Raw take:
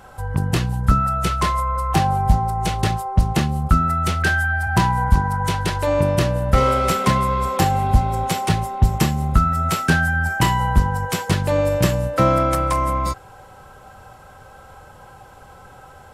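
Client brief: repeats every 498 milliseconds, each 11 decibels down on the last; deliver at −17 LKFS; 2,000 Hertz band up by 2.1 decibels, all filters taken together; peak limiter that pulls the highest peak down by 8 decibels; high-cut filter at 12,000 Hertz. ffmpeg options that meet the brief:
ffmpeg -i in.wav -af "lowpass=12000,equalizer=frequency=2000:width_type=o:gain=3,alimiter=limit=-12dB:level=0:latency=1,aecho=1:1:498|996|1494:0.282|0.0789|0.0221,volume=4dB" out.wav

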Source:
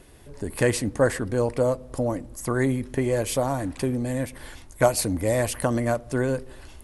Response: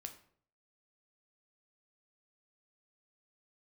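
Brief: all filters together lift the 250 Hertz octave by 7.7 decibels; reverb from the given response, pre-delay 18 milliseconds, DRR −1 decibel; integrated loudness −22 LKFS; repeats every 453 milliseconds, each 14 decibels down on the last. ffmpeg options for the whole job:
-filter_complex "[0:a]equalizer=frequency=250:width_type=o:gain=8.5,aecho=1:1:453|906:0.2|0.0399,asplit=2[link_01][link_02];[1:a]atrim=start_sample=2205,adelay=18[link_03];[link_02][link_03]afir=irnorm=-1:irlink=0,volume=5.5dB[link_04];[link_01][link_04]amix=inputs=2:normalize=0,volume=-4dB"

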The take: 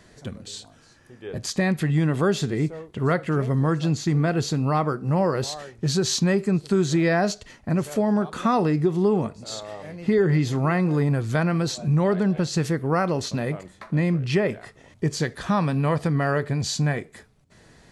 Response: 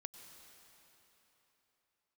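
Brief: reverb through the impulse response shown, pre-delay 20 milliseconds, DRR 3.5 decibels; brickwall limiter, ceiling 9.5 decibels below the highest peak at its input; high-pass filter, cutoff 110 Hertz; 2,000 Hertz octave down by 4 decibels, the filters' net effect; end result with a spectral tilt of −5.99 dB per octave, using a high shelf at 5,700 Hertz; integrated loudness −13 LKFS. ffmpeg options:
-filter_complex "[0:a]highpass=110,equalizer=frequency=2000:width_type=o:gain=-4.5,highshelf=frequency=5700:gain=-5,alimiter=limit=-20dB:level=0:latency=1,asplit=2[link_01][link_02];[1:a]atrim=start_sample=2205,adelay=20[link_03];[link_02][link_03]afir=irnorm=-1:irlink=0,volume=1dB[link_04];[link_01][link_04]amix=inputs=2:normalize=0,volume=14.5dB"

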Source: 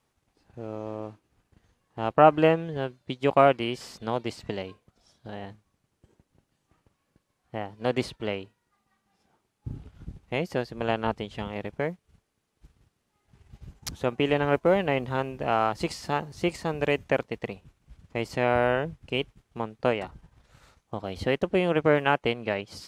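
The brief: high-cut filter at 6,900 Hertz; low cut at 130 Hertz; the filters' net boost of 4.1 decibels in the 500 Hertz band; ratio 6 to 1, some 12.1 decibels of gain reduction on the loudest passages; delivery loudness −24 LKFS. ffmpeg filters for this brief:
ffmpeg -i in.wav -af "highpass=130,lowpass=6900,equalizer=frequency=500:width_type=o:gain=5,acompressor=threshold=-23dB:ratio=6,volume=7.5dB" out.wav

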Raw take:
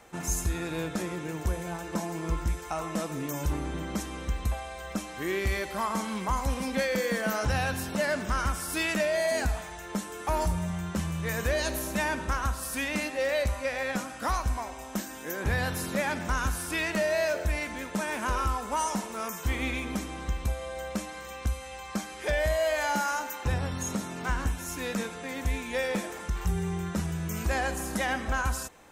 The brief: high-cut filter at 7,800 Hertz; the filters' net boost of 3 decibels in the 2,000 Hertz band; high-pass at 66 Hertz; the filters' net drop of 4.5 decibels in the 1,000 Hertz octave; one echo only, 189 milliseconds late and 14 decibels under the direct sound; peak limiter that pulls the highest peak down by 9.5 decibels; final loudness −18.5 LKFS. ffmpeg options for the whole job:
ffmpeg -i in.wav -af "highpass=66,lowpass=7800,equalizer=frequency=1000:width_type=o:gain=-7.5,equalizer=frequency=2000:width_type=o:gain=6,alimiter=level_in=0.5dB:limit=-24dB:level=0:latency=1,volume=-0.5dB,aecho=1:1:189:0.2,volume=15.5dB" out.wav

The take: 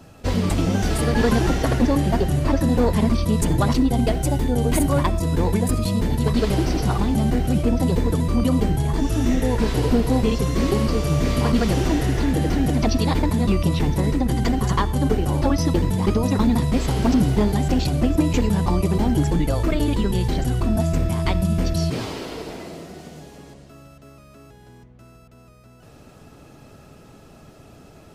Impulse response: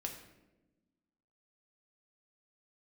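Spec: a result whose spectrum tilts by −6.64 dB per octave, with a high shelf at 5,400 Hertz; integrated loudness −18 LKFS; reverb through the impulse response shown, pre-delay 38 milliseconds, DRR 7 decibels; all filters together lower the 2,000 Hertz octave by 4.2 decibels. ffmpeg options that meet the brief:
-filter_complex "[0:a]equalizer=frequency=2000:width_type=o:gain=-4.5,highshelf=frequency=5400:gain=-6,asplit=2[link_01][link_02];[1:a]atrim=start_sample=2205,adelay=38[link_03];[link_02][link_03]afir=irnorm=-1:irlink=0,volume=-6dB[link_04];[link_01][link_04]amix=inputs=2:normalize=0,volume=2dB"

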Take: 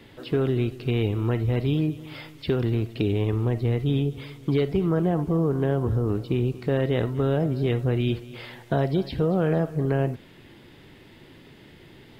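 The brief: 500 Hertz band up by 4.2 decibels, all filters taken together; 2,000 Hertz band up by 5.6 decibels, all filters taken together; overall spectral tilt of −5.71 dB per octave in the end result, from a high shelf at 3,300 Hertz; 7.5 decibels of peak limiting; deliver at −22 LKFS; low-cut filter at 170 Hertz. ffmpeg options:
ffmpeg -i in.wav -af "highpass=170,equalizer=frequency=500:width_type=o:gain=5,equalizer=frequency=2000:width_type=o:gain=4,highshelf=frequency=3300:gain=8.5,volume=4dB,alimiter=limit=-11dB:level=0:latency=1" out.wav

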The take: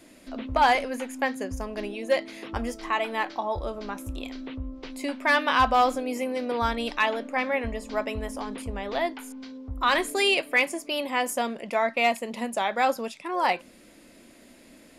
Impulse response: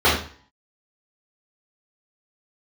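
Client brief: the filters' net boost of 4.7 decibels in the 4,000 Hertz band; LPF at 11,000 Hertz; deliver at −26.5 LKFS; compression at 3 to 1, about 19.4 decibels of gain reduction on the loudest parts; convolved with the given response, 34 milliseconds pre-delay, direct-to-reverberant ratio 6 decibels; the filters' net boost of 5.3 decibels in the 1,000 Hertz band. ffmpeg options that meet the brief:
-filter_complex "[0:a]lowpass=11000,equalizer=frequency=1000:width_type=o:gain=6.5,equalizer=frequency=4000:width_type=o:gain=6,acompressor=threshold=-38dB:ratio=3,asplit=2[link_01][link_02];[1:a]atrim=start_sample=2205,adelay=34[link_03];[link_02][link_03]afir=irnorm=-1:irlink=0,volume=-29dB[link_04];[link_01][link_04]amix=inputs=2:normalize=0,volume=10dB"

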